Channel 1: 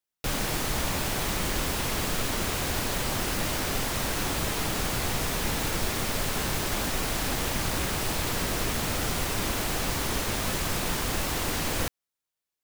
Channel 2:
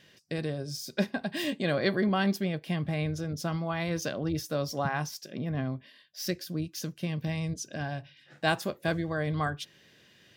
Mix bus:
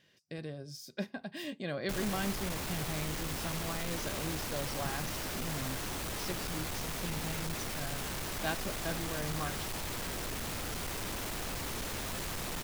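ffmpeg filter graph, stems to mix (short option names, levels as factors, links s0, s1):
-filter_complex "[0:a]asoftclip=type=tanh:threshold=0.0266,adelay=1650,volume=0.668[s0];[1:a]volume=0.355[s1];[s0][s1]amix=inputs=2:normalize=0"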